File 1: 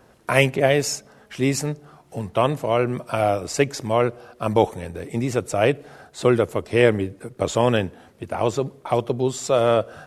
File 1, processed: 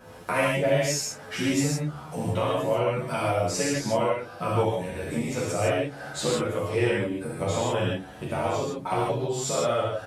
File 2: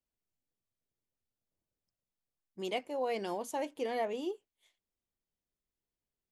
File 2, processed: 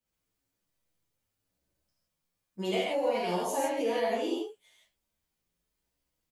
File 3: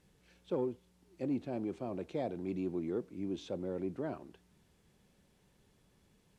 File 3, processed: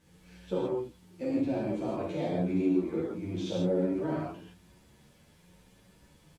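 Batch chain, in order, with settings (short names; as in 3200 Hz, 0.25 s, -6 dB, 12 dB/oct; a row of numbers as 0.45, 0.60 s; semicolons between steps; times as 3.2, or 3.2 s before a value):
compressor 3:1, threshold -35 dBFS; non-linear reverb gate 0.19 s flat, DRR -6.5 dB; endless flanger 9.7 ms +0.94 Hz; gain +5.5 dB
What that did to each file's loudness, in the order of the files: -4.5, +6.0, +7.0 LU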